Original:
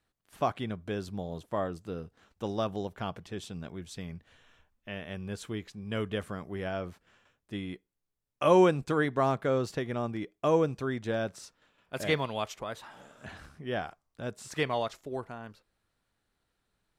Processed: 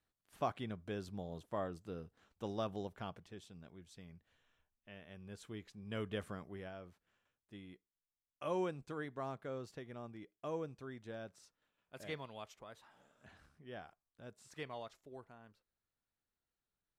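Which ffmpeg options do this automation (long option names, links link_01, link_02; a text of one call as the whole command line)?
ffmpeg -i in.wav -af "afade=type=out:start_time=2.87:duration=0.58:silence=0.446684,afade=type=in:start_time=5.14:duration=1.14:silence=0.398107,afade=type=out:start_time=6.28:duration=0.47:silence=0.354813" out.wav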